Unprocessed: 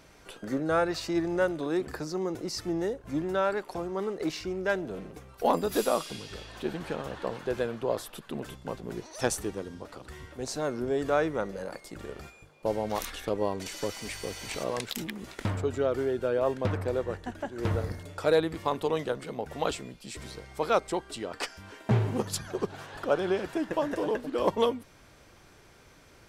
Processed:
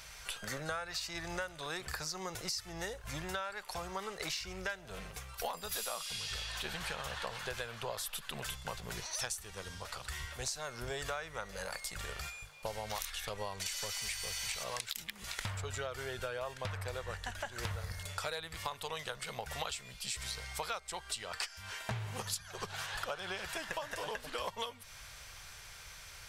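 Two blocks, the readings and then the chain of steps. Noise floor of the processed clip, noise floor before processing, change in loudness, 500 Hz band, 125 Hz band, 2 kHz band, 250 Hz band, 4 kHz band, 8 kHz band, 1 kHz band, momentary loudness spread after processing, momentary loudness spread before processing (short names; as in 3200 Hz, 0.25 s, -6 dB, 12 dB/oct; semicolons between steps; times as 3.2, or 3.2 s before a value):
-52 dBFS, -56 dBFS, -9.0 dB, -15.0 dB, -9.5 dB, -2.5 dB, -18.5 dB, +1.0 dB, +1.0 dB, -8.0 dB, 5 LU, 13 LU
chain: passive tone stack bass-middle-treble 10-0-10; compressor 12:1, threshold -47 dBFS, peak gain reduction 18.5 dB; gain +11.5 dB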